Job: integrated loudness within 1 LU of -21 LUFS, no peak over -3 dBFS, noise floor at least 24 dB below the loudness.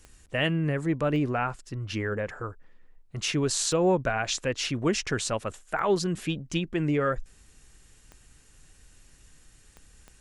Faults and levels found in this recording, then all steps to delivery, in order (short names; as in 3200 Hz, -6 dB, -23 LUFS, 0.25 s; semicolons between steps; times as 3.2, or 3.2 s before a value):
clicks 7; loudness -28.0 LUFS; peak -10.5 dBFS; loudness target -21.0 LUFS
-> de-click; gain +7 dB